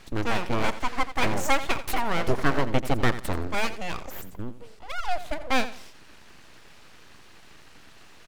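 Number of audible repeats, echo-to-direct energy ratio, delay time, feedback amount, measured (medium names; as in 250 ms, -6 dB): 2, -13.5 dB, 86 ms, 26%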